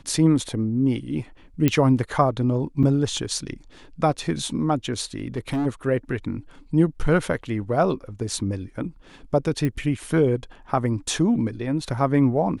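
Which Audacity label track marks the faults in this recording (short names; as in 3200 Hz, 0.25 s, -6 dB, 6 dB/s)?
1.680000	1.680000	pop -6 dBFS
2.830000	2.840000	gap 6.1 ms
5.200000	5.670000	clipped -21 dBFS
9.650000	9.650000	pop -14 dBFS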